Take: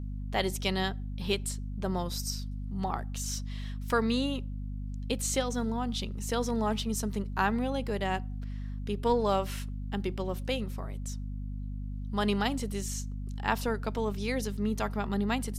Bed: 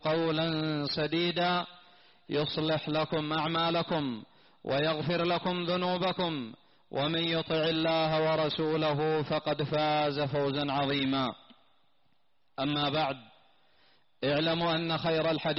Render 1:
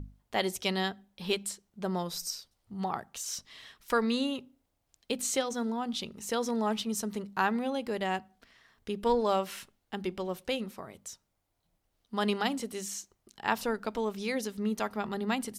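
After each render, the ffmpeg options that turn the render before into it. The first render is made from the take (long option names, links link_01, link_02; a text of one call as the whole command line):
ffmpeg -i in.wav -af "bandreject=frequency=50:width_type=h:width=6,bandreject=frequency=100:width_type=h:width=6,bandreject=frequency=150:width_type=h:width=6,bandreject=frequency=200:width_type=h:width=6,bandreject=frequency=250:width_type=h:width=6" out.wav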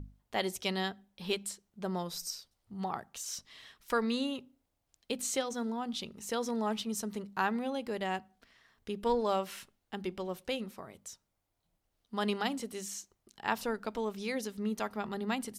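ffmpeg -i in.wav -af "volume=-3dB" out.wav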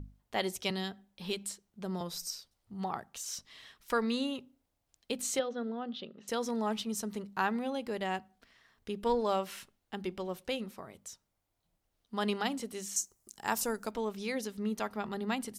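ffmpeg -i in.wav -filter_complex "[0:a]asettb=1/sr,asplit=3[link_01][link_02][link_03];[link_01]atrim=end=0.704[link_04];[link_02]atrim=start=0.7:end=2.01,asetpts=PTS-STARTPTS,afade=type=in:duration=0.004:curve=qsin,afade=type=out:start_time=1.306:duration=0.004:curve=qsin,acrossover=split=360|3000[link_05][link_06][link_07];[link_06]acompressor=threshold=-42dB:ratio=2.5:attack=3.2:release=140:knee=2.83:detection=peak[link_08];[link_05][link_08][link_07]amix=inputs=3:normalize=0[link_09];[link_03]atrim=start=2.006[link_10];[link_04][link_09]acrossfade=duration=0.004:curve1=hsin:curve2=qsin[link_11];[link_11][link_10]acrossfade=duration=0.004:curve1=qsin:curve2=hsin,asettb=1/sr,asplit=3[link_12][link_13][link_14];[link_12]atrim=end=5.394[link_15];[link_13]atrim=start=5.39:end=6.28,asetpts=PTS-STARTPTS,afade=type=in:duration=0.004:curve=qsin,afade=type=out:start_time=0.886:duration=0.004:curve=qsin,highpass=210,equalizer=frequency=540:width_type=q:width=4:gain=5,equalizer=frequency=930:width_type=q:width=4:gain=-10,equalizer=frequency=2300:width_type=q:width=4:gain=-9,lowpass=frequency=3500:width=0.5412,lowpass=frequency=3500:width=1.3066[link_16];[link_14]atrim=start=6.276[link_17];[link_15][link_16]acrossfade=duration=0.004:curve1=hsin:curve2=qsin[link_18];[link_18][link_17]acrossfade=duration=0.004:curve1=qsin:curve2=hsin,asettb=1/sr,asplit=3[link_19][link_20][link_21];[link_19]atrim=end=12.964[link_22];[link_20]atrim=start=12.96:end=13.91,asetpts=PTS-STARTPTS,afade=type=in:duration=0.004:curve=qsin,afade=type=out:start_time=0.946:duration=0.004:curve=qsin,highshelf=frequency=5000:width_type=q:width=1.5:gain=11.5[link_23];[link_21]atrim=start=13.906[link_24];[link_22][link_23]acrossfade=duration=0.004:curve1=hsin:curve2=qsin[link_25];[link_25][link_24]acrossfade=duration=0.004:curve1=qsin:curve2=hsin" out.wav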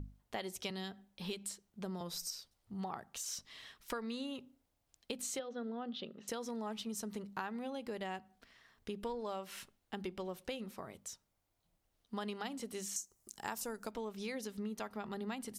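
ffmpeg -i in.wav -af "acompressor=threshold=-38dB:ratio=6" out.wav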